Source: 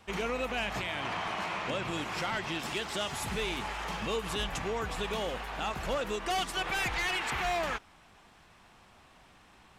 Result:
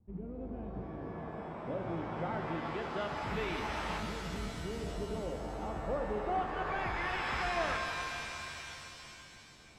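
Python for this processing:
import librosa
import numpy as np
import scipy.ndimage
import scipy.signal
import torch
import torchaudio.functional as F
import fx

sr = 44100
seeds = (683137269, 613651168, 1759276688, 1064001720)

y = fx.filter_lfo_lowpass(x, sr, shape='saw_up', hz=0.25, low_hz=200.0, high_hz=2800.0, q=0.91)
y = fx.rev_shimmer(y, sr, seeds[0], rt60_s=3.0, semitones=7, shimmer_db=-2, drr_db=5.0)
y = y * 10.0 ** (-3.0 / 20.0)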